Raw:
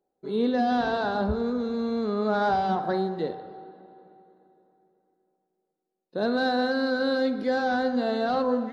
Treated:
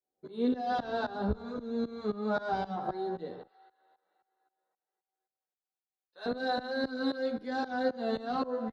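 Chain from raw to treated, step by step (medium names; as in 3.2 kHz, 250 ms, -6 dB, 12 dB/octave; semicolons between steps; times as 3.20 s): 3.46–6.26 s: high-pass 1.3 kHz 12 dB/octave; tremolo saw up 3.8 Hz, depth 95%; endless flanger 11.6 ms +1.4 Hz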